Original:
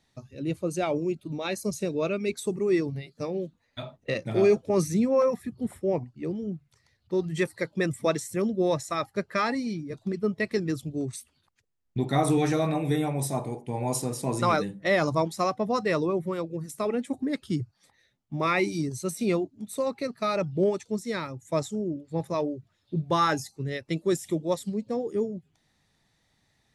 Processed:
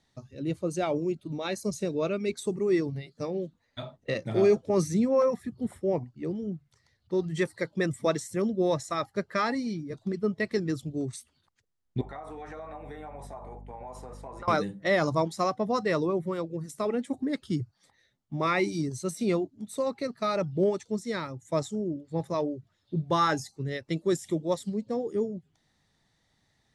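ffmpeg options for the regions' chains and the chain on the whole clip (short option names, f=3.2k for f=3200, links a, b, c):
-filter_complex "[0:a]asettb=1/sr,asplit=3[a][b][c];[a]atrim=end=12.014[d];[b]atrim=start=12.01:end=14.48,asetpts=PTS-STARTPTS,afade=t=in:d=0.004:c=qsin,afade=t=out:st=2.466:d=0.004:c=qsin,acrossover=split=540 2000:gain=0.0891 1 0.112[e][f][g];[e][f][g]amix=inputs=3:normalize=0,aeval=exprs='val(0)+0.00708*(sin(2*PI*50*n/s)+sin(2*PI*2*50*n/s)/2+sin(2*PI*3*50*n/s)/3+sin(2*PI*4*50*n/s)/4+sin(2*PI*5*50*n/s)/5)':c=same,acompressor=threshold=-36dB:ratio=8:attack=3.2:release=140:knee=1:detection=peak[h];[c]atrim=start=14.476[i];[d][h]acrossfade=d=0.004:c1=hsin:c2=qsin[j];[j][i]acrossfade=d=0.004:c1=qsin:c2=hsin,lowpass=9.4k,equalizer=f=2.5k:t=o:w=0.21:g=-5.5,volume=-1dB"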